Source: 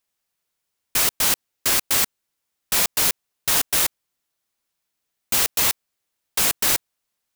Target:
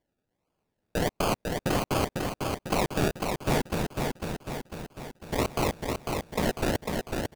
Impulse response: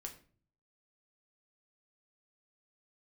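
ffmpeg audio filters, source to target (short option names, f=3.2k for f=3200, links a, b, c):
-filter_complex "[0:a]lowpass=f=2.4k:w=0.5412,lowpass=f=2.4k:w=1.3066,alimiter=limit=-22.5dB:level=0:latency=1:release=283,asplit=3[a][b][c];[a]afade=t=out:st=3.74:d=0.02[d];[b]aeval=exprs='val(0)*sin(2*PI*380*n/s)':c=same,afade=t=in:st=3.74:d=0.02,afade=t=out:st=5.37:d=0.02[e];[c]afade=t=in:st=5.37:d=0.02[f];[d][e][f]amix=inputs=3:normalize=0,acrusher=samples=33:mix=1:aa=0.000001:lfo=1:lforange=19.8:lforate=1.4,aecho=1:1:499|998|1497|1996|2495|2994|3493:0.631|0.341|0.184|0.0994|0.0537|0.029|0.0156,volume=7dB"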